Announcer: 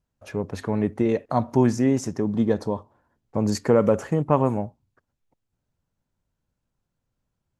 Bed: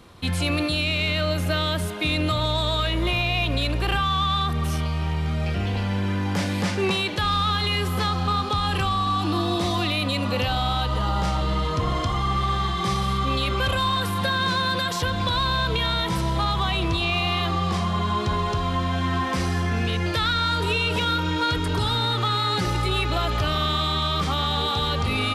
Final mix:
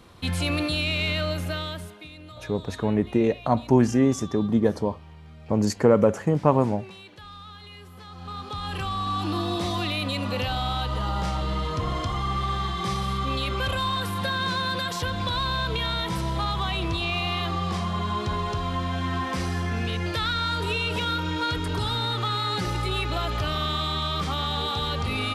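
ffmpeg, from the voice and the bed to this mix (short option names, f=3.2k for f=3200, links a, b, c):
-filter_complex "[0:a]adelay=2150,volume=0.5dB[a];[1:a]volume=15.5dB,afade=t=out:st=1.11:d=0.98:silence=0.112202,afade=t=in:st=8.06:d=1.16:silence=0.133352[b];[a][b]amix=inputs=2:normalize=0"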